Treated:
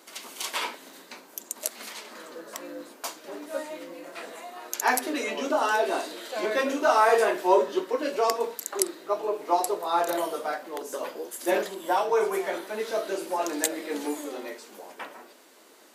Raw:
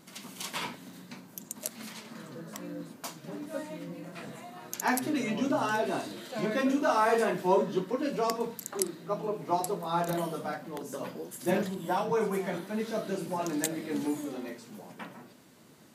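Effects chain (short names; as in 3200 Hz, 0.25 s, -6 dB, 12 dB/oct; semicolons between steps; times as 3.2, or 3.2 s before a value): HPF 350 Hz 24 dB/oct; gain +5.5 dB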